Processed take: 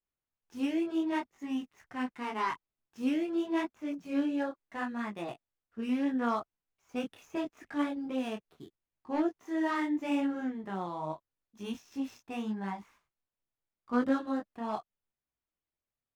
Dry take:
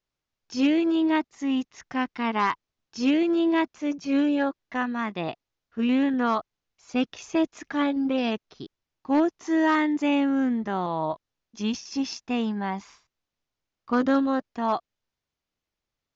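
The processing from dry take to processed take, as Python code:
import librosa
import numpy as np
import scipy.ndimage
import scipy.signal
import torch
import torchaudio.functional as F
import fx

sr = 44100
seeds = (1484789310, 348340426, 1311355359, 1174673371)

y = scipy.ndimage.median_filter(x, 9, mode='constant')
y = fx.detune_double(y, sr, cents=27)
y = y * 10.0 ** (-5.0 / 20.0)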